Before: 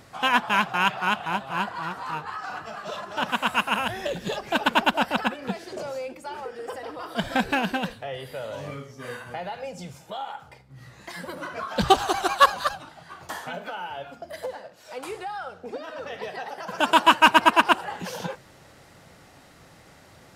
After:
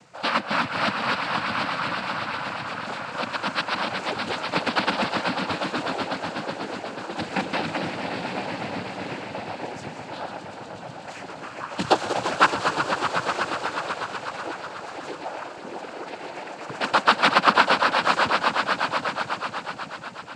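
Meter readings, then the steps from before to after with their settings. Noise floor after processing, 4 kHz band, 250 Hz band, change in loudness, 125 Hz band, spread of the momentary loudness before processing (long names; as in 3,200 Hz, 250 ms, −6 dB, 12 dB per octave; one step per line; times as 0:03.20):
−39 dBFS, +0.5 dB, 0.0 dB, 0.0 dB, +1.5 dB, 18 LU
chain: echo that builds up and dies away 123 ms, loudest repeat 5, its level −10 dB
cochlear-implant simulation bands 8
level −2 dB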